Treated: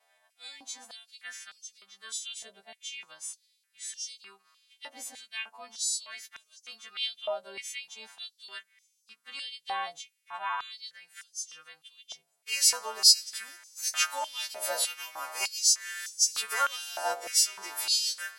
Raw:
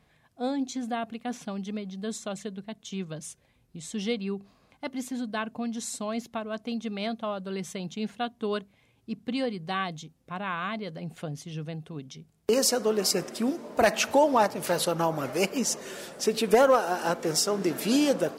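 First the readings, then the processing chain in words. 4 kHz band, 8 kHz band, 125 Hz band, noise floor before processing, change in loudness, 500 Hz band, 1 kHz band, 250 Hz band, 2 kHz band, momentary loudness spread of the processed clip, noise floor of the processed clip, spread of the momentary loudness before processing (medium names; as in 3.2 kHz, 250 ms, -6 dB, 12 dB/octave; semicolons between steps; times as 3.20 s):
+5.5 dB, +4.5 dB, under -35 dB, -65 dBFS, 0.0 dB, -16.5 dB, -7.0 dB, under -30 dB, -2.0 dB, 22 LU, -74 dBFS, 15 LU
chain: partials quantised in pitch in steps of 2 st; harmonic-percussive split percussive -15 dB; step-sequenced high-pass 3.3 Hz 670–6000 Hz; trim -7.5 dB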